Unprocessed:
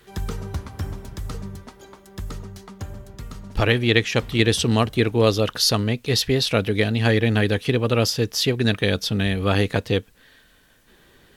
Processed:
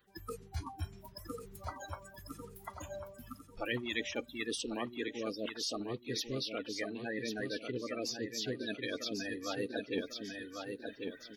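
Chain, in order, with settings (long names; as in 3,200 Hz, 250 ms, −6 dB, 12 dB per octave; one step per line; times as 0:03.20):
spectral magnitudes quantised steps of 30 dB
dynamic equaliser 1,100 Hz, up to −3 dB, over −35 dBFS, Q 1.4
reversed playback
downward compressor 6 to 1, threshold −34 dBFS, peak gain reduction 19 dB
reversed playback
noise reduction from a noise print of the clip's start 19 dB
on a send: repeating echo 1,095 ms, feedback 33%, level −7 dB
on the sum: speech leveller within 3 dB 2 s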